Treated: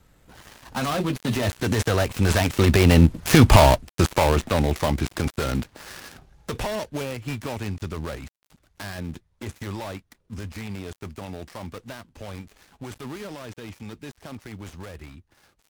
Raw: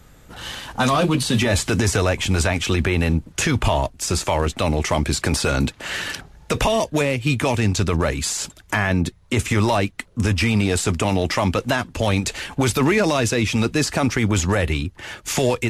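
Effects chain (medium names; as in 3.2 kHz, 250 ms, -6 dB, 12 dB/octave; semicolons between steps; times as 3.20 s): dead-time distortion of 0.19 ms; Doppler pass-by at 3.36 s, 14 m/s, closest 7.1 m; trim +7.5 dB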